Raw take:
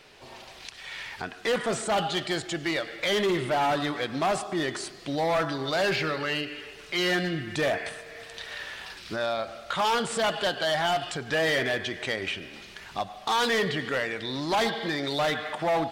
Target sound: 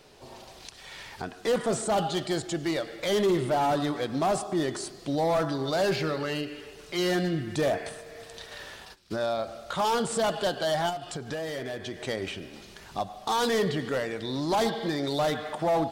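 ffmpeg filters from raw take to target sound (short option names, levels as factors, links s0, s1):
-filter_complex "[0:a]asplit=3[s0][s1][s2];[s0]afade=t=out:st=8.38:d=0.02[s3];[s1]agate=range=0.141:threshold=0.01:ratio=16:detection=peak,afade=t=in:st=8.38:d=0.02,afade=t=out:st=9.1:d=0.02[s4];[s2]afade=t=in:st=9.1:d=0.02[s5];[s3][s4][s5]amix=inputs=3:normalize=0,equalizer=f=2200:t=o:w=1.9:g=-10,asettb=1/sr,asplit=3[s6][s7][s8];[s6]atrim=end=10.894[s9];[s7]atrim=start=10.89:end=12.08,asetpts=PTS-STARTPTS,afade=t=in:d=0.004:c=qsin,afade=t=out:st=1.186:d=0.004:c=qsin,acompressor=threshold=0.02:ratio=6[s10];[s8]atrim=start=12.076[s11];[s9][s10]acrossfade=d=0.004:c1=hsin:c2=qsin[s12];[s12][s11]acrossfade=d=0.004:c1=qsin:c2=hsin,volume=1.33"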